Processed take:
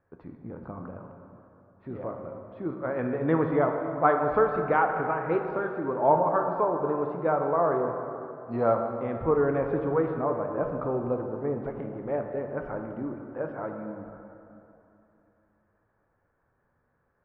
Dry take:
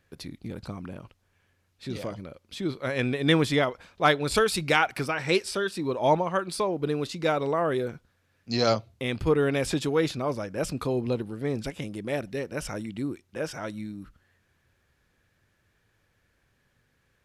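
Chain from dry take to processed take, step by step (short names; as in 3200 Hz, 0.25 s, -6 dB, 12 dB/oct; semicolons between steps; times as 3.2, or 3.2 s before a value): LPF 1200 Hz 24 dB/oct; low shelf 480 Hz -11.5 dB; plate-style reverb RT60 3 s, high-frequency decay 0.55×, DRR 3.5 dB; gain +5 dB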